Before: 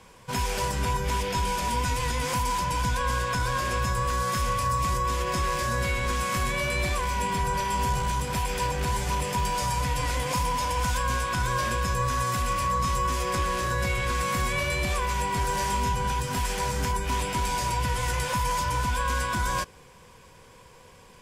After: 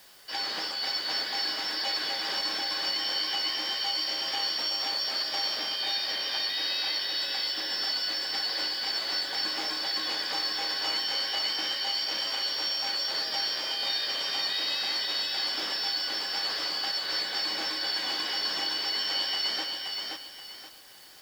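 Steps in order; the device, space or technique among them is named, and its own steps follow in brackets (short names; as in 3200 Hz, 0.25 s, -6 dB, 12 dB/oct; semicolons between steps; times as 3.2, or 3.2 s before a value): 5.59–7.22 LPF 5600 Hz 24 dB/oct; split-band scrambled radio (four-band scrambler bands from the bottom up 4321; BPF 310–2800 Hz; white noise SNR 24 dB); lo-fi delay 0.526 s, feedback 35%, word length 10-bit, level -3.5 dB; gain +3 dB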